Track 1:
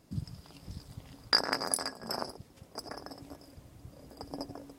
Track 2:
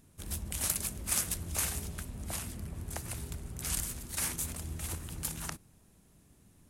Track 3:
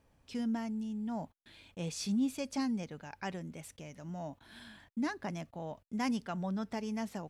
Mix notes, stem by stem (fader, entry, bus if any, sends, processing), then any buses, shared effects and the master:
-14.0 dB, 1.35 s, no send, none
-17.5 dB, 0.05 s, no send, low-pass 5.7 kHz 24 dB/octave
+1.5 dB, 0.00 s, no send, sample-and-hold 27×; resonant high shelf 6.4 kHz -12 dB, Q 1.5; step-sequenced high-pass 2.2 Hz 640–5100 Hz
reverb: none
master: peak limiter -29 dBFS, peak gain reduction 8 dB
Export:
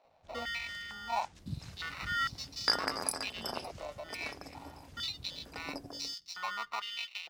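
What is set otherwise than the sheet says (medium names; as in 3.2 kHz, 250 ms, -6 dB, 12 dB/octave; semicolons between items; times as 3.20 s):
stem 1 -14.0 dB -> -3.0 dB; master: missing peak limiter -29 dBFS, peak gain reduction 8 dB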